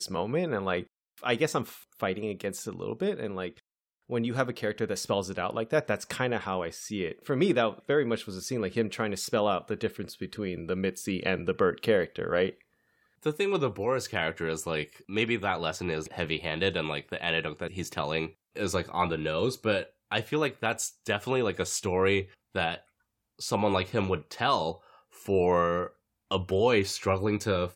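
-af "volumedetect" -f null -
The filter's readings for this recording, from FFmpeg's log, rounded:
mean_volume: -29.9 dB
max_volume: -11.5 dB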